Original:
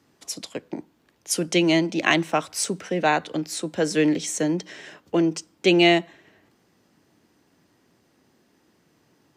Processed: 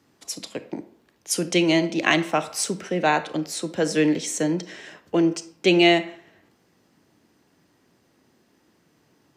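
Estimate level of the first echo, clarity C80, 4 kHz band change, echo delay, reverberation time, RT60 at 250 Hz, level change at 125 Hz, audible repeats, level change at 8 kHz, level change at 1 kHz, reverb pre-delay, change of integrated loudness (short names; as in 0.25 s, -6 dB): none, 17.5 dB, +0.5 dB, none, 0.60 s, 0.50 s, 0.0 dB, none, 0.0 dB, +0.5 dB, 27 ms, +0.5 dB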